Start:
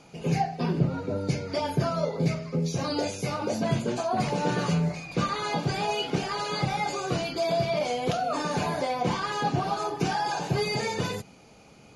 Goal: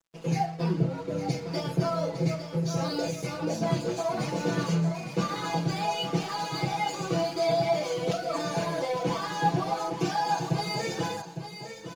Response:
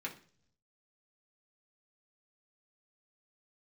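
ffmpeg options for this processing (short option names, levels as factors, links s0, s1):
-filter_complex "[0:a]highpass=72,bass=f=250:g=-13,treble=f=4000:g=14,flanger=delay=2.8:depth=3.2:regen=77:speed=0.9:shape=sinusoidal,aemphasis=mode=reproduction:type=riaa,aeval=exprs='sgn(val(0))*max(abs(val(0))-0.00335,0)':c=same,aecho=1:1:6.1:0.98,asplit=2[s0][s1];[s1]aecho=0:1:858:0.335[s2];[s0][s2]amix=inputs=2:normalize=0"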